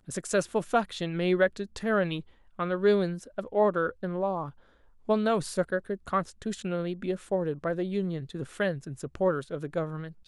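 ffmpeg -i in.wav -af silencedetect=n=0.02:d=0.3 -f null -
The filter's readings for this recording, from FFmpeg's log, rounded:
silence_start: 2.20
silence_end: 2.59 | silence_duration: 0.39
silence_start: 4.49
silence_end: 5.09 | silence_duration: 0.60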